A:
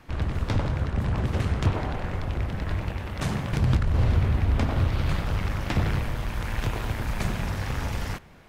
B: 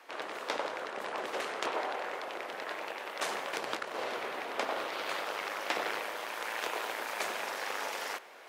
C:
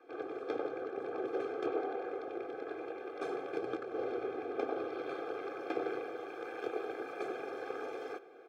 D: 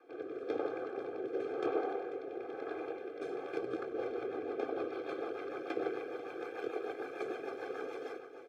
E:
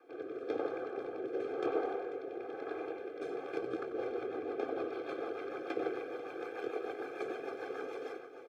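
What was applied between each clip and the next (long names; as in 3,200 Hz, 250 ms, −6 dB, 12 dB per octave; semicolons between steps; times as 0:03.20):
high-pass filter 430 Hz 24 dB per octave; reversed playback; upward compression, threshold −46 dBFS; reversed playback
moving average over 46 samples; comb filter 2.5 ms, depth 80%; level +5 dB
single-tap delay 491 ms −11 dB; rotating-speaker cabinet horn 1 Hz, later 6.7 Hz, at 0:03.26; level +1.5 dB
far-end echo of a speakerphone 90 ms, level −12 dB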